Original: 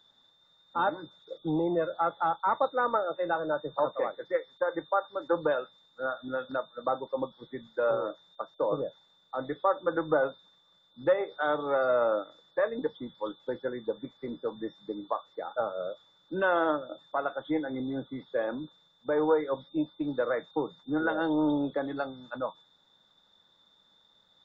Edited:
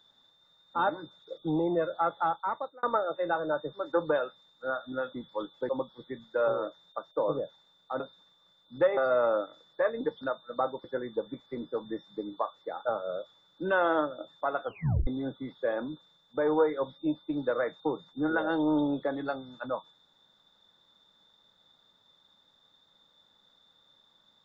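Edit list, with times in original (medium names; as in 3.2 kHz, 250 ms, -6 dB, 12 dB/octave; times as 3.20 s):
2.24–2.83 s: fade out
3.73–5.09 s: delete
6.49–7.12 s: swap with 12.99–13.55 s
9.43–10.26 s: delete
11.23–11.75 s: delete
17.35 s: tape stop 0.43 s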